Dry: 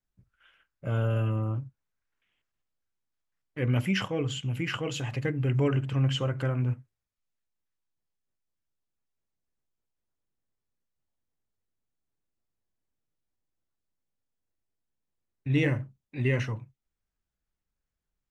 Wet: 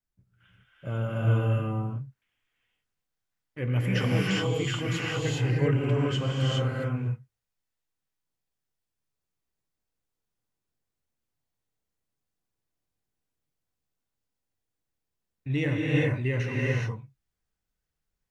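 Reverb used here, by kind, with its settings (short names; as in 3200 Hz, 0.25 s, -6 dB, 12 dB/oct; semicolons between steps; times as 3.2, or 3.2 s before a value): non-linear reverb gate 0.44 s rising, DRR -4.5 dB; gain -3 dB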